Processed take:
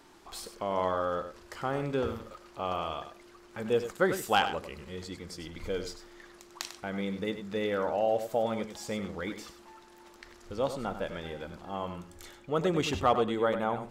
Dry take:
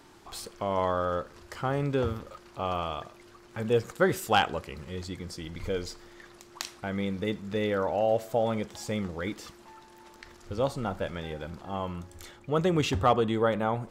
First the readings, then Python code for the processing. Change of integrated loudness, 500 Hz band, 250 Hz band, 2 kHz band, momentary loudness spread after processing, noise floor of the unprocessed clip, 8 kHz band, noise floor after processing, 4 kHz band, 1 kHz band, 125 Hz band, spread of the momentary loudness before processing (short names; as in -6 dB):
-2.5 dB, -2.0 dB, -3.0 dB, -1.5 dB, 17 LU, -54 dBFS, -1.5 dB, -55 dBFS, -1.5 dB, -1.5 dB, -6.5 dB, 16 LU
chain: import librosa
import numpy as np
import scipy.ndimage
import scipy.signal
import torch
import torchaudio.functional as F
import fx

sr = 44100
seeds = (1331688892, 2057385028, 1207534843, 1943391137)

y = fx.peak_eq(x, sr, hz=110.0, db=-8.0, octaves=1.0)
y = y + 10.0 ** (-10.5 / 20.0) * np.pad(y, (int(97 * sr / 1000.0), 0))[:len(y)]
y = y * 10.0 ** (-2.0 / 20.0)